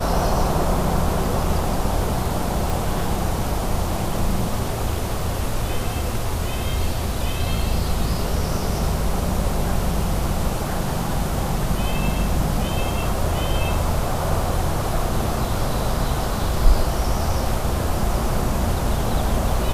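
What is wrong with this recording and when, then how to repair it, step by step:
2.7 pop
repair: de-click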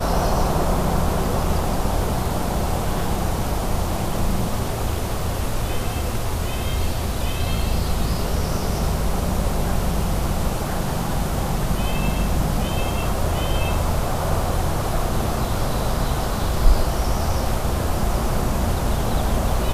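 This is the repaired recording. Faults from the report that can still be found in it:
none

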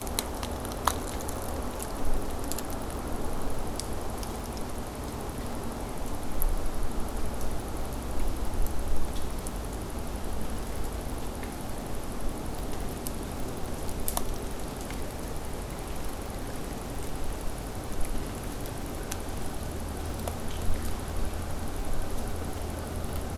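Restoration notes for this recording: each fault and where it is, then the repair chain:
crackle 22/s -33 dBFS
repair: de-click

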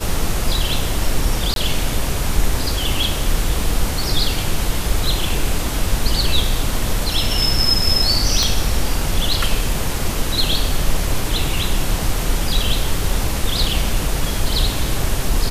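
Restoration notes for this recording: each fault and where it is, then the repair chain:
1.54–1.56 gap 22 ms
8.43 pop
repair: de-click; interpolate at 1.54, 22 ms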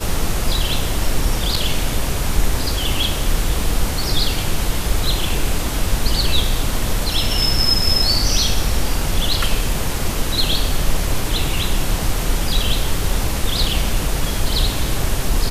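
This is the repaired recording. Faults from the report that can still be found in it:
8.43 pop

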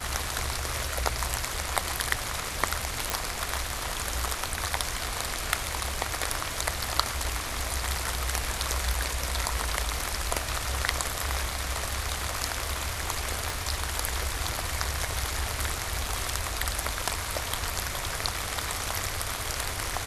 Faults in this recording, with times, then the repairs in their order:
3.1 pop
13.5 pop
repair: de-click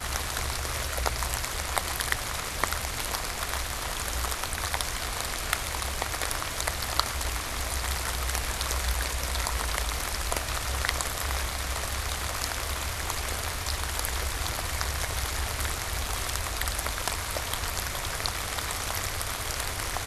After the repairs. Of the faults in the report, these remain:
13.5 pop

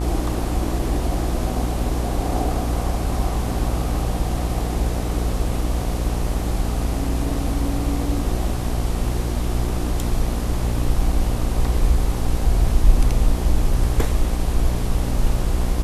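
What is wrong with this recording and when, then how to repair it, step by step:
buzz 60 Hz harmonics 21 -24 dBFS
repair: de-hum 60 Hz, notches 21

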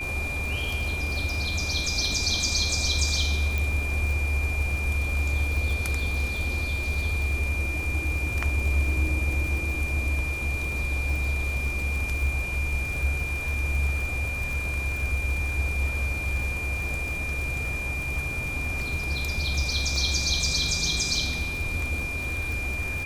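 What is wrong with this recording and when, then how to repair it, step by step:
crackle 45/s -30 dBFS
tone 2400 Hz -30 dBFS
3.58 pop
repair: de-click; notch 2400 Hz, Q 30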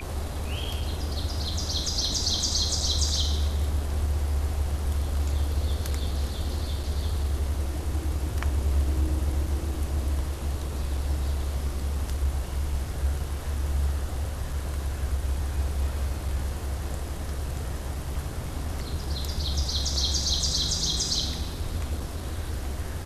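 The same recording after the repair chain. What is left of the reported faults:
none

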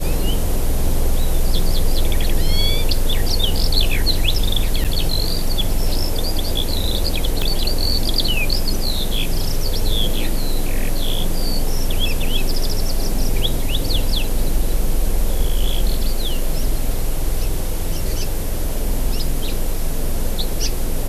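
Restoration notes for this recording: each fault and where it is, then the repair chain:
4.84–4.85 gap 7.3 ms
7.42 pop -8 dBFS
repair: de-click; interpolate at 4.84, 7.3 ms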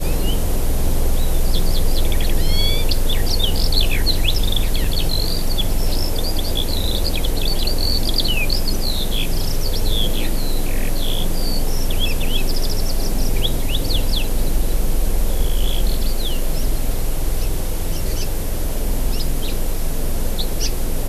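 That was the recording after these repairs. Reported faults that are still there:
7.42 pop

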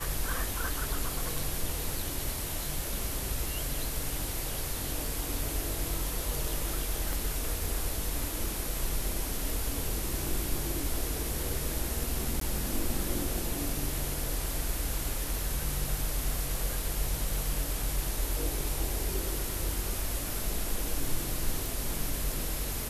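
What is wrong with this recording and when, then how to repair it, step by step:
7.13 pop
12.4–12.41 gap 13 ms
21.66 pop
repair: de-click; interpolate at 12.4, 13 ms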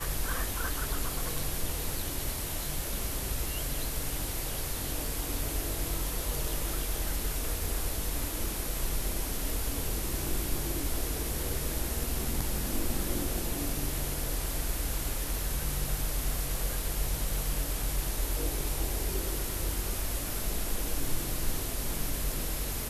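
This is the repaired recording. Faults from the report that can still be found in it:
7.13 pop

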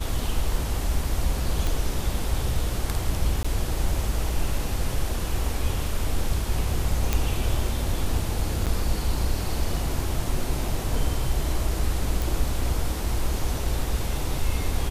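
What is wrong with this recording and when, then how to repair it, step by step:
1.67 pop
3.43–3.44 gap 15 ms
7.13 pop -8 dBFS
8.66–8.67 gap 7.4 ms
12.22 pop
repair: de-click; interpolate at 3.43, 15 ms; interpolate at 8.66, 7.4 ms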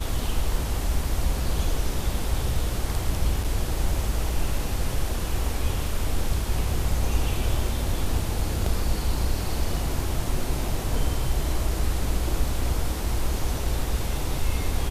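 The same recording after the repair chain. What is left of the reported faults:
none

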